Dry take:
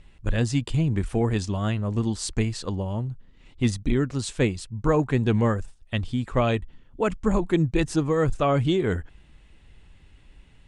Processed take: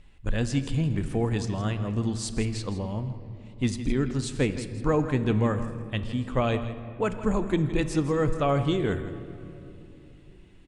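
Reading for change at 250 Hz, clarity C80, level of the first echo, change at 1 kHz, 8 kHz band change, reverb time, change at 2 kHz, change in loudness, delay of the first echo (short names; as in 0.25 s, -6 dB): -2.0 dB, 10.0 dB, -13.5 dB, -2.5 dB, -2.5 dB, 3.0 s, -2.5 dB, -2.5 dB, 0.163 s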